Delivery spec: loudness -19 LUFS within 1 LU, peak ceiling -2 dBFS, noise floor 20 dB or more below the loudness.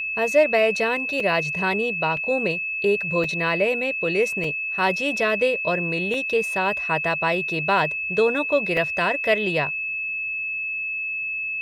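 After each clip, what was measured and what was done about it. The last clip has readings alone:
dropouts 6; longest dropout 2.7 ms; steady tone 2600 Hz; tone level -25 dBFS; loudness -22.0 LUFS; peak -6.5 dBFS; loudness target -19.0 LUFS
-> interpolate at 1.2/2.17/3.24/4.44/6.14/8.77, 2.7 ms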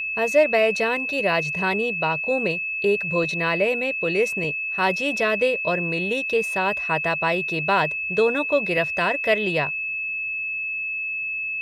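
dropouts 0; steady tone 2600 Hz; tone level -25 dBFS
-> notch 2600 Hz, Q 30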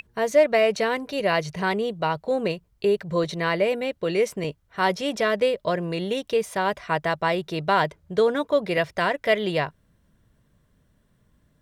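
steady tone none; loudness -24.0 LUFS; peak -7.5 dBFS; loudness target -19.0 LUFS
-> gain +5 dB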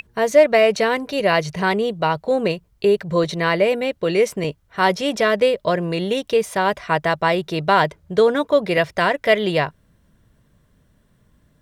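loudness -19.0 LUFS; peak -2.5 dBFS; noise floor -60 dBFS

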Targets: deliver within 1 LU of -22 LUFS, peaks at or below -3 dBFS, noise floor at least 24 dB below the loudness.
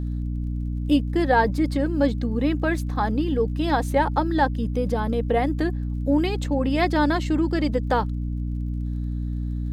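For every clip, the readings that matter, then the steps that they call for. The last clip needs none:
ticks 34/s; hum 60 Hz; harmonics up to 300 Hz; hum level -24 dBFS; loudness -24.0 LUFS; peak -6.5 dBFS; loudness target -22.0 LUFS
-> de-click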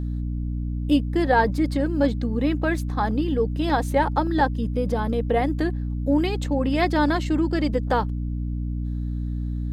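ticks 0.82/s; hum 60 Hz; harmonics up to 300 Hz; hum level -24 dBFS
-> de-hum 60 Hz, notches 5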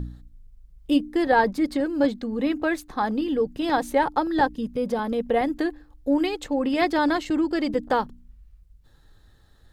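hum none; loudness -24.5 LUFS; peak -8.0 dBFS; loudness target -22.0 LUFS
-> gain +2.5 dB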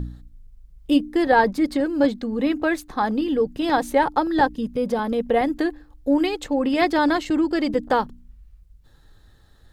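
loudness -22.0 LUFS; peak -5.5 dBFS; noise floor -53 dBFS

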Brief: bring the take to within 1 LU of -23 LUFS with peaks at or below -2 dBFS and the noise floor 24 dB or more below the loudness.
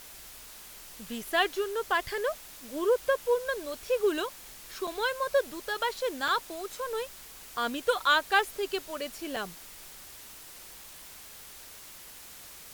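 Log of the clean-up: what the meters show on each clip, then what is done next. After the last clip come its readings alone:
dropouts 3; longest dropout 3.8 ms; noise floor -48 dBFS; noise floor target -54 dBFS; loudness -30.0 LUFS; peak -11.0 dBFS; loudness target -23.0 LUFS
-> interpolate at 4.87/6.28/9.36, 3.8 ms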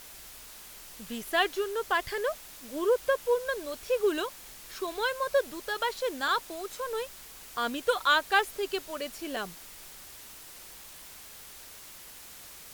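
dropouts 0; noise floor -48 dBFS; noise floor target -54 dBFS
-> denoiser 6 dB, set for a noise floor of -48 dBFS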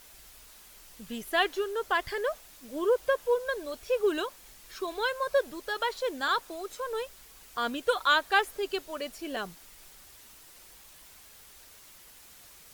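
noise floor -53 dBFS; noise floor target -54 dBFS
-> denoiser 6 dB, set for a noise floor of -53 dBFS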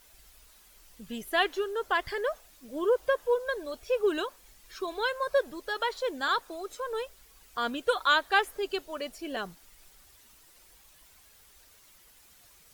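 noise floor -58 dBFS; loudness -30.0 LUFS; peak -11.5 dBFS; loudness target -23.0 LUFS
-> gain +7 dB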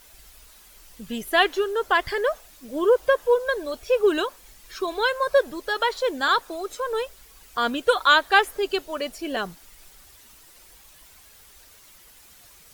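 loudness -23.0 LUFS; peak -4.5 dBFS; noise floor -51 dBFS

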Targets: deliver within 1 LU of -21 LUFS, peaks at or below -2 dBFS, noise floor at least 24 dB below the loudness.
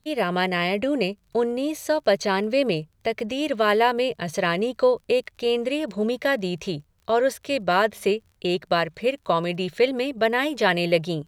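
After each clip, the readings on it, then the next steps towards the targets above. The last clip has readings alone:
ticks 37/s; loudness -23.5 LUFS; peak -6.0 dBFS; loudness target -21.0 LUFS
-> de-click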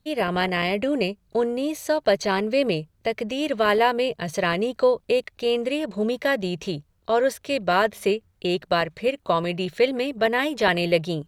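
ticks 1.3/s; loudness -23.5 LUFS; peak -6.0 dBFS; loudness target -21.0 LUFS
-> gain +2.5 dB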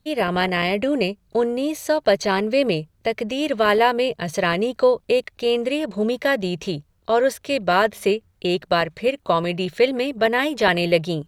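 loudness -21.0 LUFS; peak -3.5 dBFS; noise floor -62 dBFS

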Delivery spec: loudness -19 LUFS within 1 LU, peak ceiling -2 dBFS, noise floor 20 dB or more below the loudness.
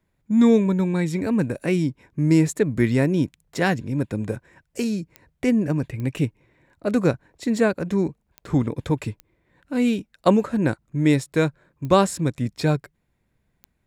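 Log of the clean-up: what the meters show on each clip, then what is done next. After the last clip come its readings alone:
clicks 6; loudness -22.5 LUFS; peak -4.0 dBFS; loudness target -19.0 LUFS
-> de-click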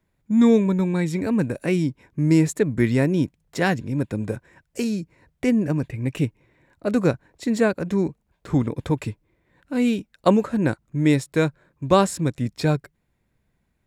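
clicks 0; loudness -22.5 LUFS; peak -4.0 dBFS; loudness target -19.0 LUFS
-> gain +3.5 dB; limiter -2 dBFS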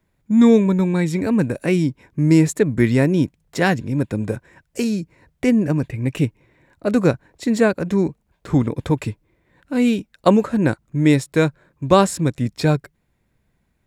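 loudness -19.0 LUFS; peak -2.0 dBFS; noise floor -68 dBFS

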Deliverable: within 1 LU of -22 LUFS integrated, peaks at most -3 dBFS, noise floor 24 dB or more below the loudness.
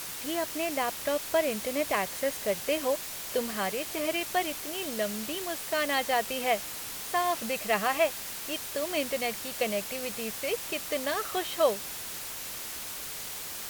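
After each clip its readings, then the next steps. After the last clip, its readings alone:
noise floor -39 dBFS; noise floor target -55 dBFS; loudness -30.5 LUFS; peak -12.0 dBFS; loudness target -22.0 LUFS
-> noise print and reduce 16 dB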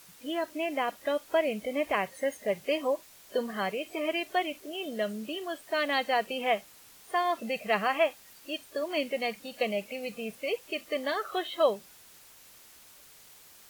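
noise floor -55 dBFS; loudness -31.0 LUFS; peak -12.5 dBFS; loudness target -22.0 LUFS
-> gain +9 dB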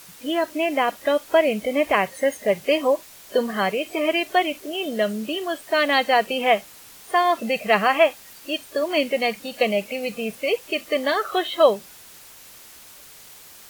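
loudness -22.0 LUFS; peak -3.5 dBFS; noise floor -46 dBFS

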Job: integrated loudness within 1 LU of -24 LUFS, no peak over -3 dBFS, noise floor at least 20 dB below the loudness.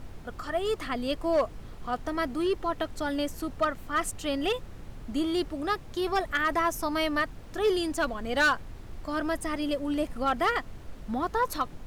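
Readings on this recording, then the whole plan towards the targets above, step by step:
clipped 0.4%; flat tops at -18.5 dBFS; noise floor -44 dBFS; noise floor target -50 dBFS; loudness -29.5 LUFS; peak -18.5 dBFS; loudness target -24.0 LUFS
-> clip repair -18.5 dBFS; noise print and reduce 6 dB; gain +5.5 dB

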